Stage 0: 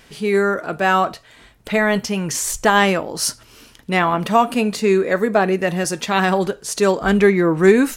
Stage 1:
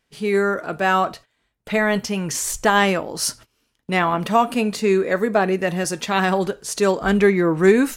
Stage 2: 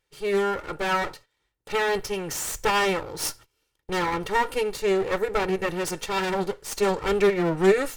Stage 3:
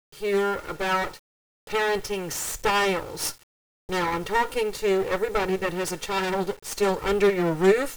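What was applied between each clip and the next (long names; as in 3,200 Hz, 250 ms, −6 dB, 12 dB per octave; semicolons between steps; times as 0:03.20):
noise gate −37 dBFS, range −21 dB; level −2 dB
lower of the sound and its delayed copy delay 2.2 ms; level −4 dB
bit-depth reduction 8 bits, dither none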